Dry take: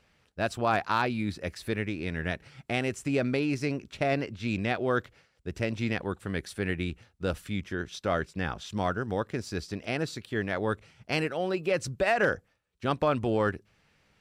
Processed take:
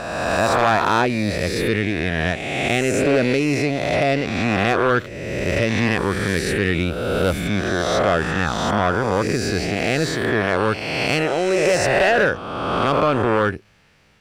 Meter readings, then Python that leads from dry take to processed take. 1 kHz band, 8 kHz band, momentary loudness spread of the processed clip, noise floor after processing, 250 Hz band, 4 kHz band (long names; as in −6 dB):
+11.5 dB, +14.5 dB, 5 LU, −33 dBFS, +10.0 dB, +13.0 dB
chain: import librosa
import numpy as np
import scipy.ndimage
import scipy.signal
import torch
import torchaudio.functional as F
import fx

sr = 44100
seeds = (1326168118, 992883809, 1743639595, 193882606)

p1 = fx.spec_swells(x, sr, rise_s=1.66)
p2 = fx.rider(p1, sr, range_db=10, speed_s=2.0)
p3 = p1 + (p2 * librosa.db_to_amplitude(0.5))
p4 = 10.0 ** (-11.0 / 20.0) * np.tanh(p3 / 10.0 ** (-11.0 / 20.0))
y = p4 * librosa.db_to_amplitude(2.0)